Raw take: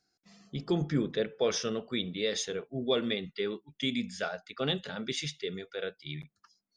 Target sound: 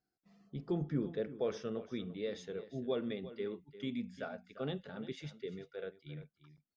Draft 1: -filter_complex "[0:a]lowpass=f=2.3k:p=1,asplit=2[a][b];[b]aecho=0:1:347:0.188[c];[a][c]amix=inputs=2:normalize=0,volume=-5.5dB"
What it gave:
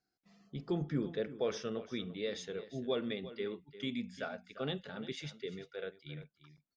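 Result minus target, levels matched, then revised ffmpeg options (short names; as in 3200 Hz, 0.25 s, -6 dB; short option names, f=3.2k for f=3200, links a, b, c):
2000 Hz band +3.5 dB
-filter_complex "[0:a]lowpass=f=930:p=1,asplit=2[a][b];[b]aecho=0:1:347:0.188[c];[a][c]amix=inputs=2:normalize=0,volume=-5.5dB"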